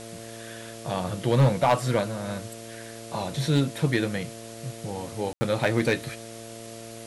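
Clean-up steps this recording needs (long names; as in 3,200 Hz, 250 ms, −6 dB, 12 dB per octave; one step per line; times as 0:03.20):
clipped peaks rebuilt −13 dBFS
hum removal 113.7 Hz, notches 6
ambience match 0:05.33–0:05.41
broadband denoise 29 dB, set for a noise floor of −41 dBFS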